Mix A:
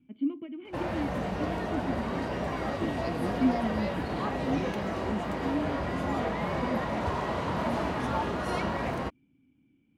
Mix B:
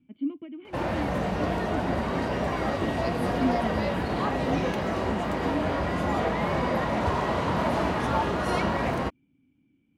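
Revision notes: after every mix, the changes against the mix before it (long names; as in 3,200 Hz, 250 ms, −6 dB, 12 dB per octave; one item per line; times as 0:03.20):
background +4.5 dB
reverb: off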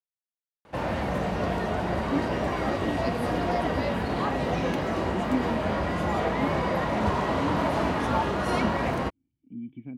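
speech: entry +1.90 s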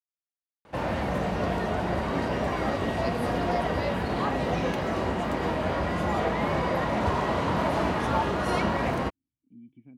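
speech −11.5 dB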